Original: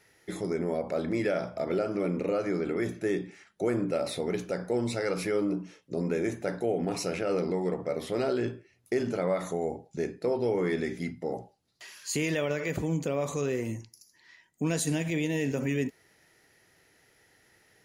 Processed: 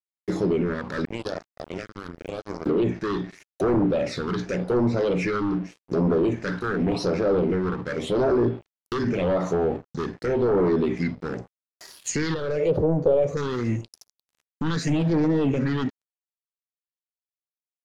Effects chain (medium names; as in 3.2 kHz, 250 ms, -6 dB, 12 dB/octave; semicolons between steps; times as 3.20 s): bass shelf 210 Hz -2 dB; 1.05–2.66 s: power-law waveshaper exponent 3; sine folder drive 9 dB, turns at -16.5 dBFS; phase shifter stages 6, 0.87 Hz, lowest notch 630–2900 Hz; crossover distortion -41 dBFS; low-pass that closes with the level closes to 2.1 kHz, closed at -18 dBFS; 12.34–13.37 s: graphic EQ 250/500/1000/2000/4000/8000 Hz -9/+10/-4/-9/-7/-11 dB